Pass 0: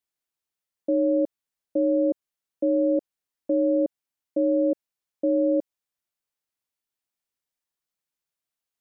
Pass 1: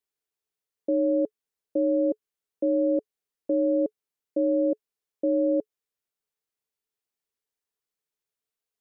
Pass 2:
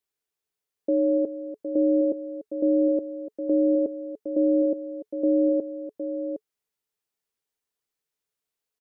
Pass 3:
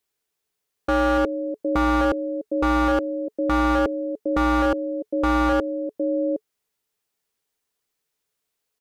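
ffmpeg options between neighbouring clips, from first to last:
ffmpeg -i in.wav -af "equalizer=frequency=430:width=6.4:gain=12,volume=-2.5dB" out.wav
ffmpeg -i in.wav -af "aecho=1:1:292|762:0.224|0.376,volume=1.5dB" out.wav
ffmpeg -i in.wav -af "aeval=exprs='0.0891*(abs(mod(val(0)/0.0891+3,4)-2)-1)':channel_layout=same,volume=7dB" out.wav

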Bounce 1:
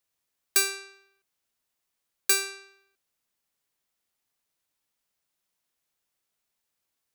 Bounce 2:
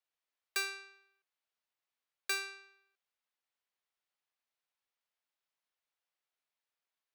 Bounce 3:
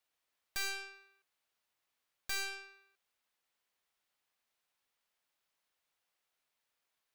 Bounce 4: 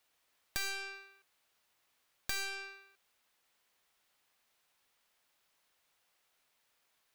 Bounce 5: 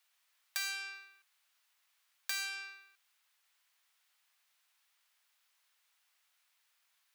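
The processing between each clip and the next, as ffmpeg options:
ffmpeg -i in.wav -filter_complex "[0:a]acrossover=split=450 4600:gain=0.2 1 0.224[link_01][link_02][link_03];[link_01][link_02][link_03]amix=inputs=3:normalize=0,volume=-6dB" out.wav
ffmpeg -i in.wav -af "aeval=exprs='(tanh(200*val(0)+0.7)-tanh(0.7))/200':channel_layout=same,volume=10.5dB" out.wav
ffmpeg -i in.wav -af "acompressor=threshold=-43dB:ratio=6,volume=8.5dB" out.wav
ffmpeg -i in.wav -af "highpass=1100,volume=1dB" out.wav

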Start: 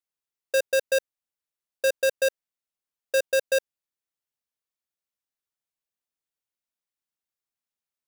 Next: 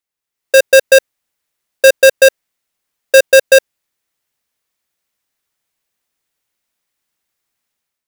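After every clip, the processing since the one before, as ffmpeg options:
ffmpeg -i in.wav -af "equalizer=frequency=2000:width_type=o:width=0.57:gain=3,dynaudnorm=framelen=170:gausssize=5:maxgain=10dB,volume=6dB" out.wav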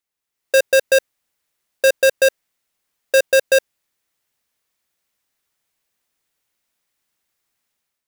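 ffmpeg -i in.wav -af "alimiter=limit=-9.5dB:level=0:latency=1:release=11" out.wav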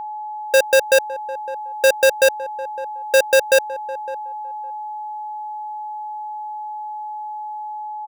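ffmpeg -i in.wav -filter_complex "[0:a]aeval=exprs='val(0)+0.0447*sin(2*PI*850*n/s)':channel_layout=same,asplit=2[link_01][link_02];[link_02]adelay=559,lowpass=frequency=950:poles=1,volume=-15dB,asplit=2[link_03][link_04];[link_04]adelay=559,lowpass=frequency=950:poles=1,volume=0.17[link_05];[link_01][link_03][link_05]amix=inputs=3:normalize=0" out.wav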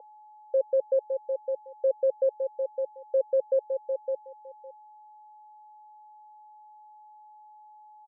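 ffmpeg -i in.wav -af "asoftclip=type=hard:threshold=-22dB,asuperpass=centerf=510:order=4:qfactor=3.7,volume=1.5dB" out.wav

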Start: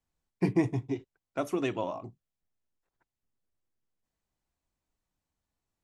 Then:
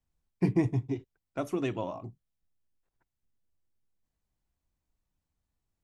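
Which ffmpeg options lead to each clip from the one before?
ffmpeg -i in.wav -af "lowshelf=frequency=180:gain=9.5,volume=-3dB" out.wav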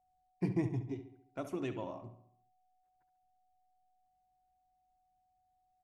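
ffmpeg -i in.wav -filter_complex "[0:a]asplit=2[link_01][link_02];[link_02]adelay=69,lowpass=frequency=4000:poles=1,volume=-10.5dB,asplit=2[link_03][link_04];[link_04]adelay=69,lowpass=frequency=4000:poles=1,volume=0.51,asplit=2[link_05][link_06];[link_06]adelay=69,lowpass=frequency=4000:poles=1,volume=0.51,asplit=2[link_07][link_08];[link_08]adelay=69,lowpass=frequency=4000:poles=1,volume=0.51,asplit=2[link_09][link_10];[link_10]adelay=69,lowpass=frequency=4000:poles=1,volume=0.51,asplit=2[link_11][link_12];[link_12]adelay=69,lowpass=frequency=4000:poles=1,volume=0.51[link_13];[link_01][link_03][link_05][link_07][link_09][link_11][link_13]amix=inputs=7:normalize=0,aeval=exprs='val(0)+0.000501*sin(2*PI*740*n/s)':channel_layout=same,volume=-7.5dB" out.wav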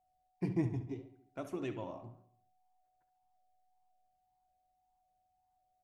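ffmpeg -i in.wav -af "flanger=delay=4.9:depth=7.8:regen=86:speed=1.8:shape=triangular,volume=3dB" out.wav

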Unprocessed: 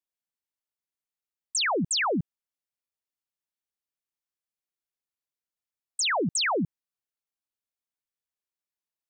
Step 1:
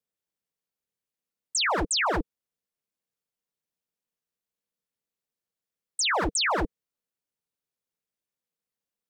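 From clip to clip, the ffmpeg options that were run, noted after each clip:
ffmpeg -i in.wav -af "equalizer=frequency=330:width_type=o:width=0.82:gain=12,aeval=exprs='0.0794*(abs(mod(val(0)/0.0794+3,4)-2)-1)':channel_layout=same,aeval=exprs='val(0)*sin(2*PI*140*n/s)':channel_layout=same,volume=3.5dB" out.wav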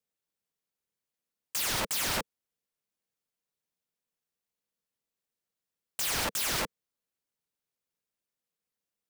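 ffmpeg -i in.wav -af "aeval=exprs='(mod(17.8*val(0)+1,2)-1)/17.8':channel_layout=same" out.wav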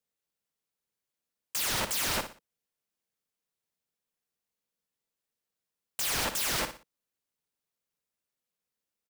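ffmpeg -i in.wav -af "aecho=1:1:60|120|180:0.299|0.0955|0.0306" out.wav

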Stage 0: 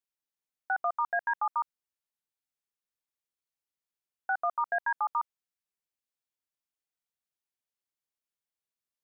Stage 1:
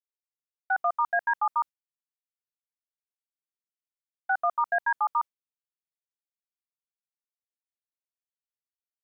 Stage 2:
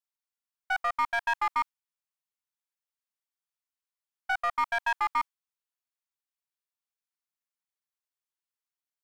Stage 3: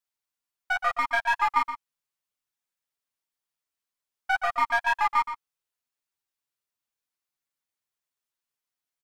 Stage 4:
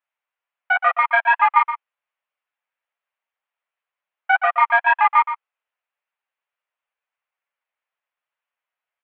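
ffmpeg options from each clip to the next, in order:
ffmpeg -i in.wav -af "agate=range=-33dB:threshold=-32dB:ratio=3:detection=peak,volume=4dB" out.wav
ffmpeg -i in.wav -af "aeval=exprs='clip(val(0),-1,0.0224)':channel_layout=same,lowshelf=frequency=640:width_type=q:width=1.5:gain=-11" out.wav
ffmpeg -i in.wav -filter_complex "[0:a]flanger=delay=6.9:depth=2.8:regen=-4:speed=2:shape=sinusoidal,asplit=2[link_01][link_02];[link_02]adelay=122.4,volume=-10dB,highshelf=frequency=4000:gain=-2.76[link_03];[link_01][link_03]amix=inputs=2:normalize=0,volume=6.5dB" out.wav
ffmpeg -i in.wav -af "asuperpass=centerf=1200:order=8:qfactor=0.52,volume=8.5dB" out.wav

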